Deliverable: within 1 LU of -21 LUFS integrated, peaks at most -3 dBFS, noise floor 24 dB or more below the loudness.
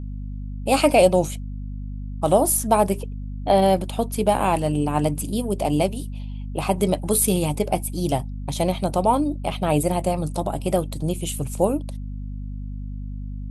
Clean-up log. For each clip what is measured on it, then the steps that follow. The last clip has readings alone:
hum 50 Hz; harmonics up to 250 Hz; hum level -28 dBFS; loudness -22.0 LUFS; peak -4.0 dBFS; loudness target -21.0 LUFS
-> notches 50/100/150/200/250 Hz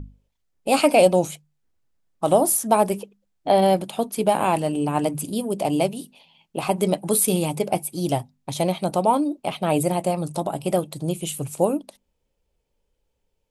hum none; loudness -22.5 LUFS; peak -3.5 dBFS; loudness target -21.0 LUFS
-> gain +1.5 dB; limiter -3 dBFS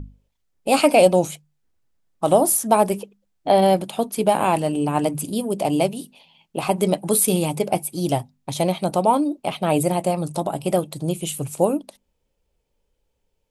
loudness -21.0 LUFS; peak -3.0 dBFS; noise floor -72 dBFS

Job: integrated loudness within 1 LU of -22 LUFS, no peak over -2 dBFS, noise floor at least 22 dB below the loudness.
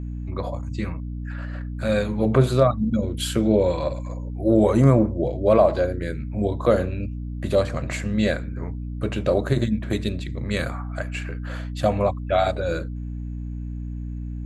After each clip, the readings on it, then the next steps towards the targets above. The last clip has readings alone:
hum 60 Hz; harmonics up to 300 Hz; hum level -28 dBFS; loudness -23.5 LUFS; peak -4.5 dBFS; loudness target -22.0 LUFS
-> de-hum 60 Hz, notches 5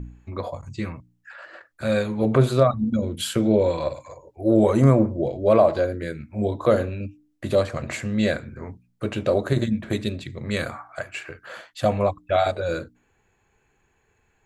hum none; loudness -23.0 LUFS; peak -4.5 dBFS; loudness target -22.0 LUFS
-> gain +1 dB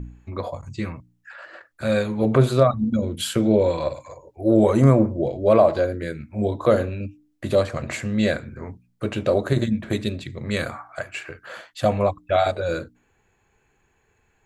loudness -22.0 LUFS; peak -3.5 dBFS; noise floor -66 dBFS

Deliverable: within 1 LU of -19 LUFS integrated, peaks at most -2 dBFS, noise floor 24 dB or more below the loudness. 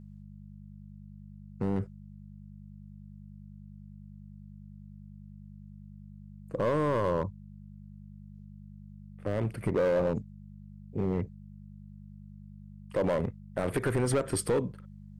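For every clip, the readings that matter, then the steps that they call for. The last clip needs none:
clipped 1.3%; flat tops at -22.0 dBFS; hum 50 Hz; harmonics up to 200 Hz; hum level -46 dBFS; loudness -31.0 LUFS; peak -22.0 dBFS; loudness target -19.0 LUFS
-> clip repair -22 dBFS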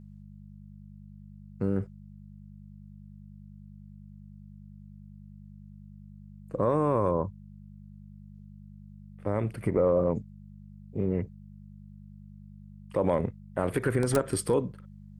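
clipped 0.0%; hum 50 Hz; harmonics up to 200 Hz; hum level -46 dBFS
-> de-hum 50 Hz, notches 4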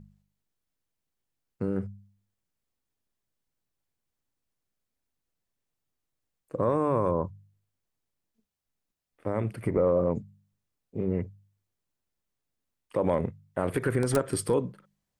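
hum none; loudness -29.0 LUFS; peak -12.5 dBFS; loudness target -19.0 LUFS
-> gain +10 dB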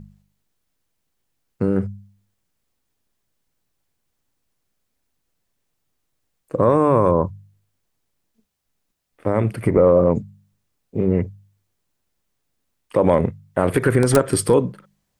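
loudness -19.0 LUFS; peak -2.5 dBFS; noise floor -74 dBFS

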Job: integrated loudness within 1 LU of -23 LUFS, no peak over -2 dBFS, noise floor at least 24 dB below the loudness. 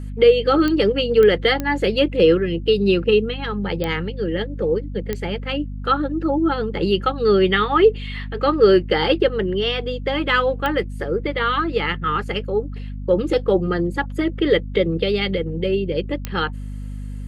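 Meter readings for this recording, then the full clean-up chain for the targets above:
clicks 7; hum 50 Hz; harmonics up to 250 Hz; hum level -27 dBFS; loudness -19.5 LUFS; peak -3.5 dBFS; loudness target -23.0 LUFS
-> de-click; de-hum 50 Hz, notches 5; gain -3.5 dB

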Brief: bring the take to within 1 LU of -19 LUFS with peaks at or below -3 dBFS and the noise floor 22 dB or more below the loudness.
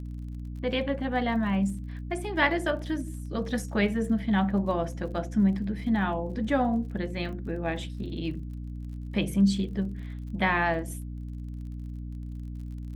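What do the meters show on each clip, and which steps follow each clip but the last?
ticks 38/s; hum 60 Hz; harmonics up to 300 Hz; hum level -34 dBFS; loudness -29.5 LUFS; peak -11.5 dBFS; loudness target -19.0 LUFS
-> de-click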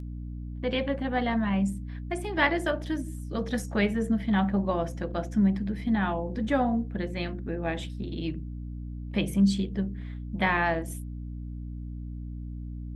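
ticks 0.15/s; hum 60 Hz; harmonics up to 300 Hz; hum level -34 dBFS
-> de-hum 60 Hz, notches 5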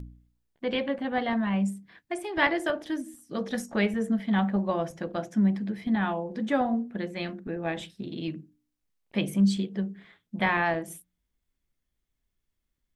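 hum none; loudness -29.0 LUFS; peak -12.0 dBFS; loudness target -19.0 LUFS
-> gain +10 dB; limiter -3 dBFS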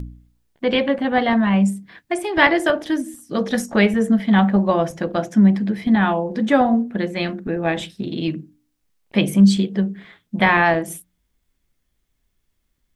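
loudness -19.0 LUFS; peak -3.0 dBFS; noise floor -71 dBFS

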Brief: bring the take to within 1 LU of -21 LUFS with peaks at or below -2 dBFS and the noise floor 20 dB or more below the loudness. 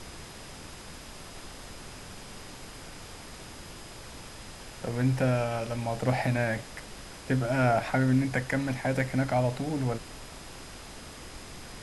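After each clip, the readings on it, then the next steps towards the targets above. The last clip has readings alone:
steady tone 5000 Hz; tone level -56 dBFS; noise floor -45 dBFS; noise floor target -49 dBFS; loudness -28.5 LUFS; peak -12.5 dBFS; loudness target -21.0 LUFS
-> notch 5000 Hz, Q 30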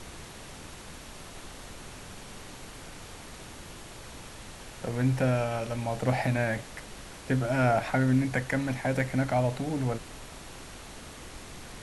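steady tone none; noise floor -46 dBFS; noise floor target -49 dBFS
-> noise print and reduce 6 dB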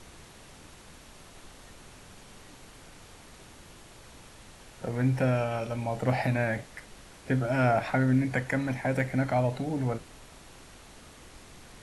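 noise floor -51 dBFS; loudness -28.5 LUFS; peak -12.5 dBFS; loudness target -21.0 LUFS
-> gain +7.5 dB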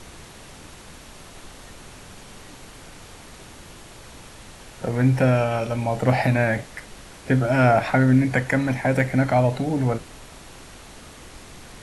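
loudness -21.0 LUFS; peak -5.0 dBFS; noise floor -44 dBFS

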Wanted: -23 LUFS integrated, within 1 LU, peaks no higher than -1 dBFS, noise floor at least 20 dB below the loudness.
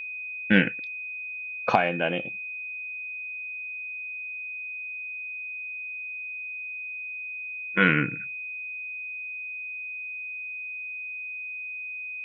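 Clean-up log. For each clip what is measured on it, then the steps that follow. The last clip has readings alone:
steady tone 2500 Hz; tone level -33 dBFS; loudness -29.5 LUFS; peak -4.5 dBFS; loudness target -23.0 LUFS
-> notch 2500 Hz, Q 30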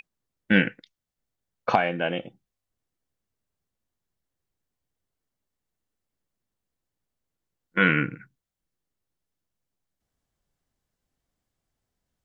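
steady tone none; loudness -24.5 LUFS; peak -5.0 dBFS; loudness target -23.0 LUFS
-> gain +1.5 dB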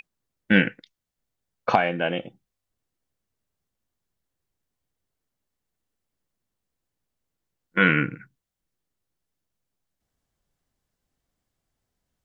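loudness -23.0 LUFS; peak -3.5 dBFS; noise floor -84 dBFS

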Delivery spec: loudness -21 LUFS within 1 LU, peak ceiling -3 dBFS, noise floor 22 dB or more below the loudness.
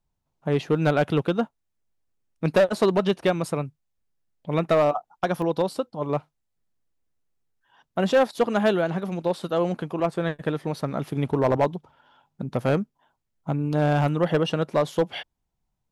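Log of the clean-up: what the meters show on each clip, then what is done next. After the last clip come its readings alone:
clipped 0.6%; flat tops at -13.5 dBFS; dropouts 1; longest dropout 1.1 ms; loudness -24.5 LUFS; peak -13.5 dBFS; loudness target -21.0 LUFS
-> clip repair -13.5 dBFS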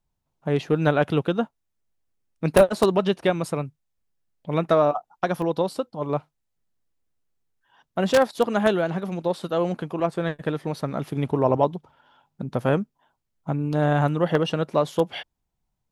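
clipped 0.0%; dropouts 1; longest dropout 1.1 ms
-> interpolate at 5.42, 1.1 ms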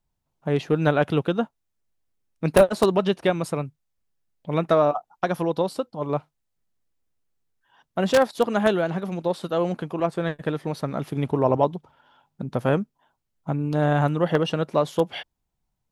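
dropouts 0; loudness -24.0 LUFS; peak -4.5 dBFS; loudness target -21.0 LUFS
-> gain +3 dB; limiter -3 dBFS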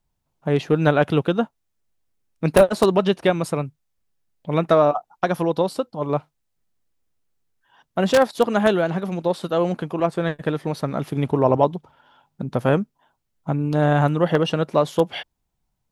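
loudness -21.0 LUFS; peak -3.0 dBFS; noise floor -76 dBFS

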